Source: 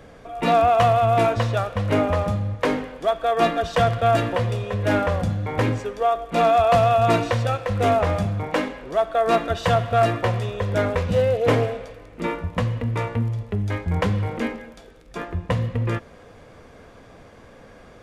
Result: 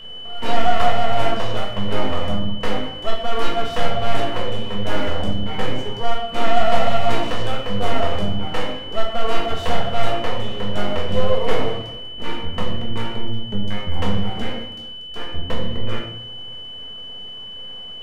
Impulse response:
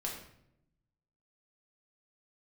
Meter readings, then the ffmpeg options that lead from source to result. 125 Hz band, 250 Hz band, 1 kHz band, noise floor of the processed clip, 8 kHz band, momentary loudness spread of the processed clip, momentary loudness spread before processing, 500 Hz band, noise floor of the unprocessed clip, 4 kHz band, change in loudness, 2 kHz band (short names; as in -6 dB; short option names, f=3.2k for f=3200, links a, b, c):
-5.0 dB, -1.0 dB, -2.5 dB, -34 dBFS, -0.5 dB, 11 LU, 10 LU, -3.5 dB, -47 dBFS, +9.5 dB, -3.0 dB, -0.5 dB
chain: -filter_complex "[0:a]aeval=exprs='max(val(0),0)':c=same,aeval=exprs='val(0)+0.02*sin(2*PI*3000*n/s)':c=same[a];[1:a]atrim=start_sample=2205,asetrate=48510,aresample=44100[b];[a][b]afir=irnorm=-1:irlink=0,volume=1.5dB"